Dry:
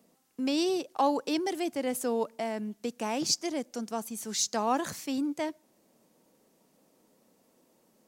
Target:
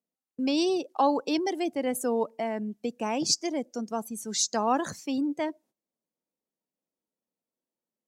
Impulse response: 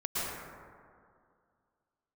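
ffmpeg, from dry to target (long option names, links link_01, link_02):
-af "agate=range=-15dB:threshold=-58dB:ratio=16:detection=peak,afftdn=noise_reduction=15:noise_floor=-43,volume=2.5dB"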